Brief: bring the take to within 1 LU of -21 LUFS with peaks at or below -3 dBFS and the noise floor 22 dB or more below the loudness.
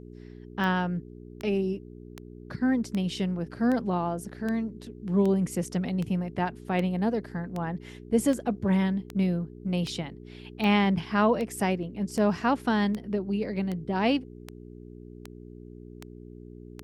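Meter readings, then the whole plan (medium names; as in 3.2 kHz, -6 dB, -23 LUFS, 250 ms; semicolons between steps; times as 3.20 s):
clicks found 22; hum 60 Hz; highest harmonic 420 Hz; hum level -44 dBFS; loudness -28.0 LUFS; peak level -11.5 dBFS; loudness target -21.0 LUFS
-> de-click; de-hum 60 Hz, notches 7; trim +7 dB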